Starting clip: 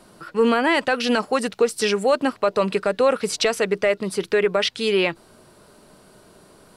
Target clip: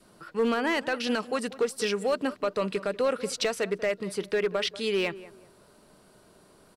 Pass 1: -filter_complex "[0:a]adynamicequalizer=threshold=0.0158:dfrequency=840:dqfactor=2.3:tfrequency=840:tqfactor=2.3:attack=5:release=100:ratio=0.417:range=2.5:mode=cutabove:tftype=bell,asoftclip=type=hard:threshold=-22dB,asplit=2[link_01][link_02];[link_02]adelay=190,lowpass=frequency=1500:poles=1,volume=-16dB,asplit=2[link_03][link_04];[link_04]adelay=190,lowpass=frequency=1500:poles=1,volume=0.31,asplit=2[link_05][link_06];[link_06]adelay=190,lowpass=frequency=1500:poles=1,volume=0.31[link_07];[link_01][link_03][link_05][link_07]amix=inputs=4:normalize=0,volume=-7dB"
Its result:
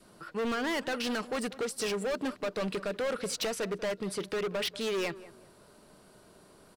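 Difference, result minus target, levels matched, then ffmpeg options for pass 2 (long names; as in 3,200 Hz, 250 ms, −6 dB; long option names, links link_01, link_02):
hard clipping: distortion +16 dB
-filter_complex "[0:a]adynamicequalizer=threshold=0.0158:dfrequency=840:dqfactor=2.3:tfrequency=840:tqfactor=2.3:attack=5:release=100:ratio=0.417:range=2.5:mode=cutabove:tftype=bell,asoftclip=type=hard:threshold=-12.5dB,asplit=2[link_01][link_02];[link_02]adelay=190,lowpass=frequency=1500:poles=1,volume=-16dB,asplit=2[link_03][link_04];[link_04]adelay=190,lowpass=frequency=1500:poles=1,volume=0.31,asplit=2[link_05][link_06];[link_06]adelay=190,lowpass=frequency=1500:poles=1,volume=0.31[link_07];[link_01][link_03][link_05][link_07]amix=inputs=4:normalize=0,volume=-7dB"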